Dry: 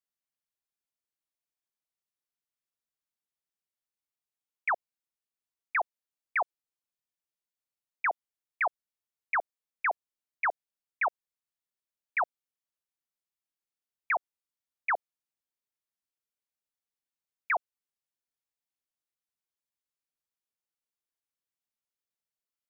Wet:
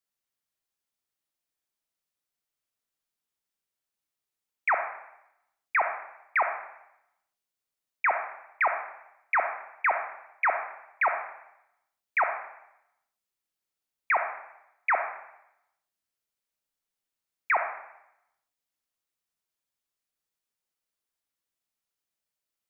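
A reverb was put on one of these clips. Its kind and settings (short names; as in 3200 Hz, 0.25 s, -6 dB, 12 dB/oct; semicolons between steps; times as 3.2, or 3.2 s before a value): digital reverb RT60 0.82 s, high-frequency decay 1×, pre-delay 5 ms, DRR 5 dB; gain +3.5 dB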